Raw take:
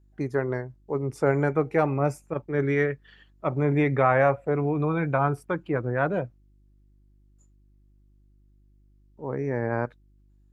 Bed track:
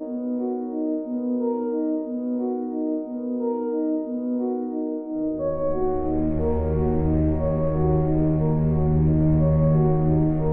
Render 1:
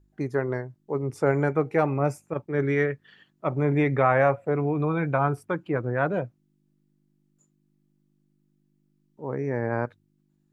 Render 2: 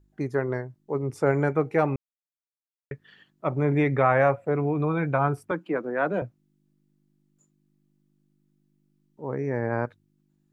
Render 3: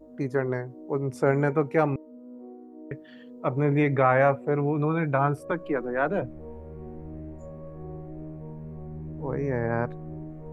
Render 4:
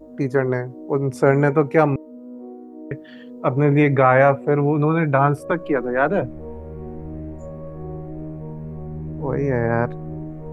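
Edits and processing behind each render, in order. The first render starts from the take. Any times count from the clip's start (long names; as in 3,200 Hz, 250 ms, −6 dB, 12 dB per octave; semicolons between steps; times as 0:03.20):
hum removal 50 Hz, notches 2
0:01.96–0:02.91: silence; 0:05.51–0:06.22: Butterworth high-pass 170 Hz 48 dB per octave
mix in bed track −18.5 dB
level +7 dB; brickwall limiter −2 dBFS, peak gain reduction 1.5 dB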